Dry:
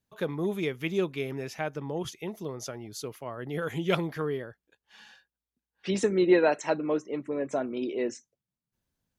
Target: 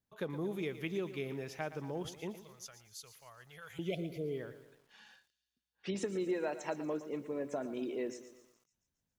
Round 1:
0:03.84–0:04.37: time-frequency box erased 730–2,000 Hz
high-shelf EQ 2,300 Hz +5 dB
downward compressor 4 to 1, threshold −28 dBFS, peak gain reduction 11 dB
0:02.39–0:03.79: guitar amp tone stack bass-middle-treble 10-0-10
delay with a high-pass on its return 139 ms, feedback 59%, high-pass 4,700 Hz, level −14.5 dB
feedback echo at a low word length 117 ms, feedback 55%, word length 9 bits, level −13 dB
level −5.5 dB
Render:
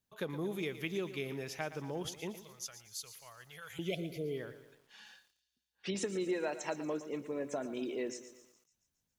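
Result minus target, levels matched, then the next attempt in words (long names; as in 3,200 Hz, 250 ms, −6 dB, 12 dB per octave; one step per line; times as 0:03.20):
4,000 Hz band +4.5 dB
0:03.84–0:04.37: time-frequency box erased 730–2,000 Hz
high-shelf EQ 2,300 Hz −2 dB
downward compressor 4 to 1, threshold −28 dBFS, peak gain reduction 11 dB
0:02.39–0:03.79: guitar amp tone stack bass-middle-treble 10-0-10
delay with a high-pass on its return 139 ms, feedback 59%, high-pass 4,700 Hz, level −14.5 dB
feedback echo at a low word length 117 ms, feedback 55%, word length 9 bits, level −13 dB
level −5.5 dB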